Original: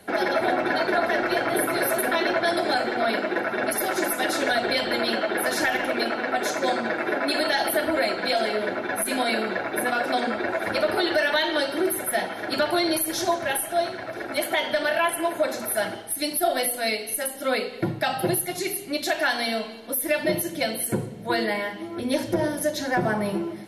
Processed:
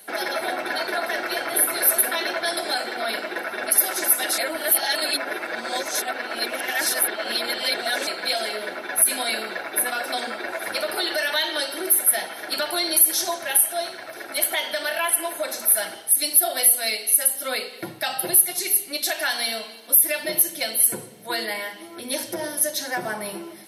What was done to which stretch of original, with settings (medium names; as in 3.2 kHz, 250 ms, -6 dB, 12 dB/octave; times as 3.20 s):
4.38–8.07 s: reverse
whole clip: high-pass 50 Hz; RIAA curve recording; band-stop 7 kHz, Q 10; trim -3 dB